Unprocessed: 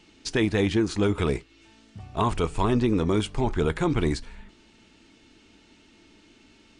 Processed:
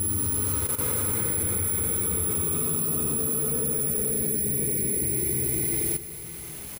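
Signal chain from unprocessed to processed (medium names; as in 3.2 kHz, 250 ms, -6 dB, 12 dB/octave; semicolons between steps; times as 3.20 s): high-pass 84 Hz 24 dB/octave; bass shelf 280 Hz +9 dB; peak limiter -12 dBFS, peak gain reduction 5.5 dB; careless resampling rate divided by 4×, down filtered, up zero stuff; Paulstretch 24×, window 0.10 s, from 1.14 s; bit crusher 6-bit; on a send: multi-tap echo 93/97/252/349/635 ms -7/-5/-13/-10.5/-15 dB; on the sum: level held to a coarse grid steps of 12 dB; trim -2 dB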